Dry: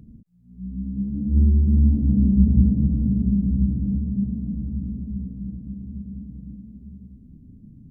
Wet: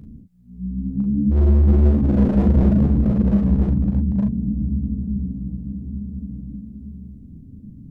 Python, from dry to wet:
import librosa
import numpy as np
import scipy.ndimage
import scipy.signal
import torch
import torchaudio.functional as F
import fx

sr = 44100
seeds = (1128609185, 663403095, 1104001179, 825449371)

y = np.clip(10.0 ** (17.5 / 20.0) * x, -1.0, 1.0) / 10.0 ** (17.5 / 20.0)
y = fx.room_early_taps(y, sr, ms=(14, 38, 49), db=(-11.0, -4.5, -10.0))
y = y * 10.0 ** (4.0 / 20.0)